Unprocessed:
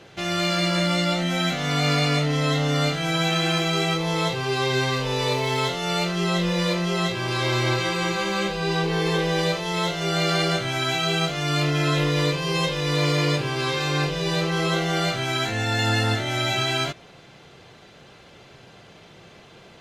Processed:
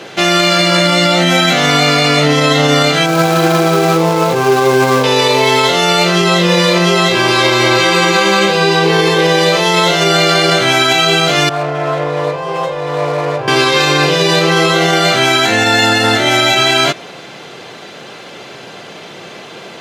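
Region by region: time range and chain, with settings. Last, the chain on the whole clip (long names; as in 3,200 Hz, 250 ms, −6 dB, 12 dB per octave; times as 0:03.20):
0:03.06–0:05.04: running median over 15 samples + notch filter 1,900 Hz, Q 7.2
0:11.49–0:13.48: phase distortion by the signal itself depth 0.14 ms + drawn EQ curve 110 Hz 0 dB, 210 Hz −22 dB, 710 Hz −1 dB, 3,100 Hz −21 dB, 12,000 Hz −29 dB
whole clip: high-pass filter 220 Hz 12 dB per octave; boost into a limiter +18.5 dB; level −1 dB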